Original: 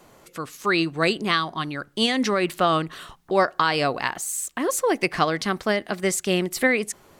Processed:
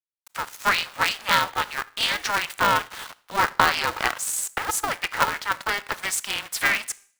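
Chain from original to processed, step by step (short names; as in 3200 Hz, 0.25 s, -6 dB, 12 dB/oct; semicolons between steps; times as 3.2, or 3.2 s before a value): 4.95–5.5 LPF 2300 Hz 6 dB/oct; in parallel at +0.5 dB: compressor, threshold -32 dBFS, peak gain reduction 16.5 dB; on the sum: sample gate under -33.5 dBFS; ladder high-pass 860 Hz, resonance 35%; on a send at -18 dB: reverb RT60 0.50 s, pre-delay 25 ms; on the sum: polarity switched at an audio rate 200 Hz; gain +5.5 dB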